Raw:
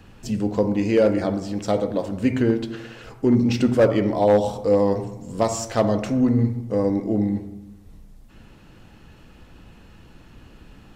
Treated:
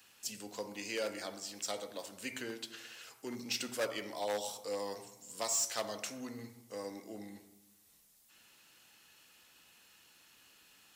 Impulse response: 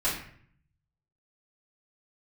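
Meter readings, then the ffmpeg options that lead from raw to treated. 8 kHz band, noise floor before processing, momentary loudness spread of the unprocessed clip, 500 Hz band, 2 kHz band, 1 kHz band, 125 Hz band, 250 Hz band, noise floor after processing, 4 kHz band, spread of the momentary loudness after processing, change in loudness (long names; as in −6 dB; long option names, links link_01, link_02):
0.0 dB, −49 dBFS, 9 LU, −20.0 dB, −9.0 dB, −16.0 dB, −32.0 dB, −26.0 dB, −66 dBFS, −3.0 dB, 14 LU, −18.0 dB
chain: -filter_complex "[0:a]aderivative,acrossover=split=110|490|2800[link_01][link_02][link_03][link_04];[link_04]asoftclip=type=tanh:threshold=-29.5dB[link_05];[link_01][link_02][link_03][link_05]amix=inputs=4:normalize=0,volume=2.5dB"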